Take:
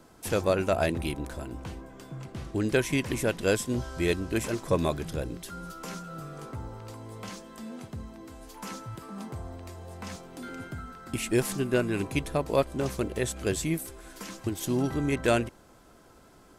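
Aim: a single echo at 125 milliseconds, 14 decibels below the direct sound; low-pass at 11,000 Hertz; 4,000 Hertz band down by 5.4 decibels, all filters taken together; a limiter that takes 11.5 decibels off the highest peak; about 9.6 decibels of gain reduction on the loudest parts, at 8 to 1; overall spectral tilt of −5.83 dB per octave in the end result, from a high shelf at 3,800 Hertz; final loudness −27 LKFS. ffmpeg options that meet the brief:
ffmpeg -i in.wav -af "lowpass=11000,highshelf=frequency=3800:gain=-5,equalizer=frequency=4000:width_type=o:gain=-4,acompressor=threshold=-29dB:ratio=8,alimiter=level_in=5dB:limit=-24dB:level=0:latency=1,volume=-5dB,aecho=1:1:125:0.2,volume=13dB" out.wav

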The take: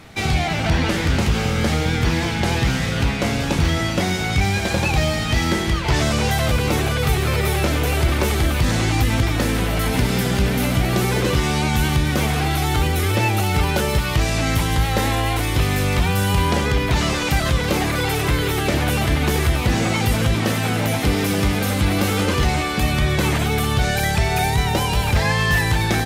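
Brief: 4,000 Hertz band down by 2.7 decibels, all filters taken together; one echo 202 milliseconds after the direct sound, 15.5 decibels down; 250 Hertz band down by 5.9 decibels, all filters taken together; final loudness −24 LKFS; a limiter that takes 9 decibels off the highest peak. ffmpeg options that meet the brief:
ffmpeg -i in.wav -af "equalizer=frequency=250:width_type=o:gain=-9,equalizer=frequency=4000:width_type=o:gain=-3.5,alimiter=limit=-17.5dB:level=0:latency=1,aecho=1:1:202:0.168,volume=2dB" out.wav

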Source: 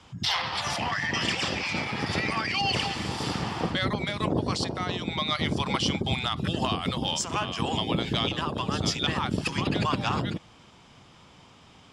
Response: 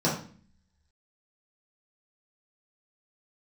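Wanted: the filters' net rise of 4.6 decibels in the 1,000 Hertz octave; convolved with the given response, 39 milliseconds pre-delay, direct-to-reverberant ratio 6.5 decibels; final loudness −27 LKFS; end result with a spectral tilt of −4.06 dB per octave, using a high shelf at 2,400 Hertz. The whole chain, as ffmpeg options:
-filter_complex "[0:a]equalizer=frequency=1000:width_type=o:gain=4.5,highshelf=frequency=2400:gain=6,asplit=2[link_01][link_02];[1:a]atrim=start_sample=2205,adelay=39[link_03];[link_02][link_03]afir=irnorm=-1:irlink=0,volume=-19dB[link_04];[link_01][link_04]amix=inputs=2:normalize=0,volume=-4dB"

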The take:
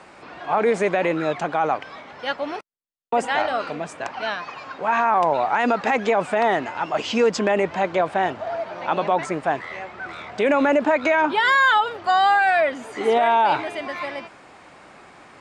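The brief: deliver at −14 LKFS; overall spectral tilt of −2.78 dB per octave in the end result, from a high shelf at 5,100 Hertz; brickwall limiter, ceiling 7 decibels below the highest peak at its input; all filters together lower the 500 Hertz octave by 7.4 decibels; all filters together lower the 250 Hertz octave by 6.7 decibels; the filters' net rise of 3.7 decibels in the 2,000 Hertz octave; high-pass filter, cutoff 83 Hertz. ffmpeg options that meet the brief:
ffmpeg -i in.wav -af "highpass=83,equalizer=frequency=250:width_type=o:gain=-5.5,equalizer=frequency=500:width_type=o:gain=-9,equalizer=frequency=2000:width_type=o:gain=5,highshelf=frequency=5100:gain=4,volume=10.5dB,alimiter=limit=-2.5dB:level=0:latency=1" out.wav

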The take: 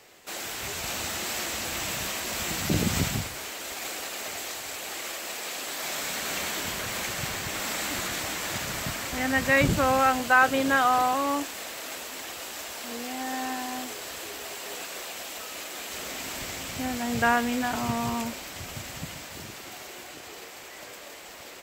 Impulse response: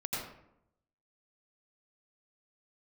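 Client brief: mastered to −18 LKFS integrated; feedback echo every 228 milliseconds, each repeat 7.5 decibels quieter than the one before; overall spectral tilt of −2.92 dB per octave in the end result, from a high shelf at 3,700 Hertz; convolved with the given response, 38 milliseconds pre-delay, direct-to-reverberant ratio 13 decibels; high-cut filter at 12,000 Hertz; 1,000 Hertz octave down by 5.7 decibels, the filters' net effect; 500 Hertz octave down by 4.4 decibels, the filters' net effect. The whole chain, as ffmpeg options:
-filter_complex "[0:a]lowpass=12000,equalizer=frequency=500:width_type=o:gain=-3,equalizer=frequency=1000:width_type=o:gain=-7.5,highshelf=frequency=3700:gain=5.5,aecho=1:1:228|456|684|912|1140:0.422|0.177|0.0744|0.0312|0.0131,asplit=2[link_01][link_02];[1:a]atrim=start_sample=2205,adelay=38[link_03];[link_02][link_03]afir=irnorm=-1:irlink=0,volume=-17dB[link_04];[link_01][link_04]amix=inputs=2:normalize=0,volume=9.5dB"

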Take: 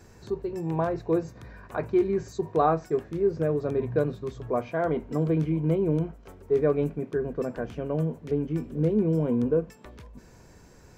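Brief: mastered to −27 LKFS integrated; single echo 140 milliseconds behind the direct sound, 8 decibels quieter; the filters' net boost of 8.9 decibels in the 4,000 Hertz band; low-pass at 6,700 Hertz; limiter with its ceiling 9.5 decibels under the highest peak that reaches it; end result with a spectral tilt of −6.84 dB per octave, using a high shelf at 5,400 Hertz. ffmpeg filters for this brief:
ffmpeg -i in.wav -af "lowpass=6700,equalizer=frequency=4000:width_type=o:gain=8,highshelf=frequency=5400:gain=8.5,alimiter=limit=-19dB:level=0:latency=1,aecho=1:1:140:0.398,volume=2dB" out.wav

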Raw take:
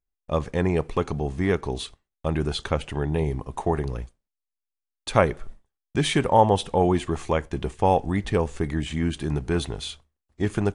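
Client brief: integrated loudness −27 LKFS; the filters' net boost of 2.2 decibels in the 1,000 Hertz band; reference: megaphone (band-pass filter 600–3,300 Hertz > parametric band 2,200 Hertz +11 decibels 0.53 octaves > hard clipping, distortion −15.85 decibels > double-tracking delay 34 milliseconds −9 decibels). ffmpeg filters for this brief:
ffmpeg -i in.wav -filter_complex "[0:a]highpass=600,lowpass=3300,equalizer=frequency=1000:width_type=o:gain=3.5,equalizer=frequency=2200:width_type=o:width=0.53:gain=11,asoftclip=type=hard:threshold=-10dB,asplit=2[link_01][link_02];[link_02]adelay=34,volume=-9dB[link_03];[link_01][link_03]amix=inputs=2:normalize=0,volume=-0.5dB" out.wav

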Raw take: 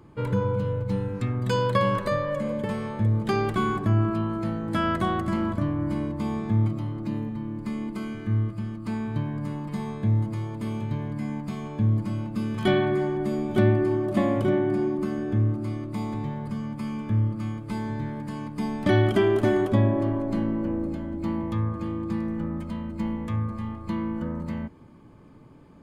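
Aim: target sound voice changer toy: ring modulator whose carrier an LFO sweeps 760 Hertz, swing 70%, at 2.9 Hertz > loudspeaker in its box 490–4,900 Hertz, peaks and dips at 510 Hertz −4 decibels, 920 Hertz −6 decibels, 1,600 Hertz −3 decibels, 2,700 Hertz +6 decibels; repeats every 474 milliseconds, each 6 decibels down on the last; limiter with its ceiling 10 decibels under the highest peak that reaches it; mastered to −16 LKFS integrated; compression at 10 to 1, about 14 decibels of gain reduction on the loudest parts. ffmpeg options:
ffmpeg -i in.wav -af "acompressor=threshold=-30dB:ratio=10,alimiter=level_in=5.5dB:limit=-24dB:level=0:latency=1,volume=-5.5dB,aecho=1:1:474|948|1422|1896|2370|2844:0.501|0.251|0.125|0.0626|0.0313|0.0157,aeval=exprs='val(0)*sin(2*PI*760*n/s+760*0.7/2.9*sin(2*PI*2.9*n/s))':channel_layout=same,highpass=490,equalizer=frequency=510:width_type=q:width=4:gain=-4,equalizer=frequency=920:width_type=q:width=4:gain=-6,equalizer=frequency=1600:width_type=q:width=4:gain=-3,equalizer=frequency=2700:width_type=q:width=4:gain=6,lowpass=frequency=4900:width=0.5412,lowpass=frequency=4900:width=1.3066,volume=26.5dB" out.wav

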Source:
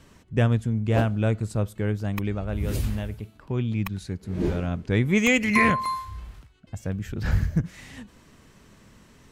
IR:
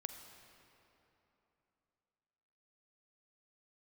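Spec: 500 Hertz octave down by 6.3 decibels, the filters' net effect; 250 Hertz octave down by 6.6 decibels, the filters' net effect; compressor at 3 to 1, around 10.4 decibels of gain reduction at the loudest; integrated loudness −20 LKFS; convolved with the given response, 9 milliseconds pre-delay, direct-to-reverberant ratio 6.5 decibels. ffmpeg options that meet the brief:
-filter_complex "[0:a]equalizer=frequency=250:width_type=o:gain=-7.5,equalizer=frequency=500:width_type=o:gain=-5.5,acompressor=threshold=-31dB:ratio=3,asplit=2[link_01][link_02];[1:a]atrim=start_sample=2205,adelay=9[link_03];[link_02][link_03]afir=irnorm=-1:irlink=0,volume=-4dB[link_04];[link_01][link_04]amix=inputs=2:normalize=0,volume=13dB"

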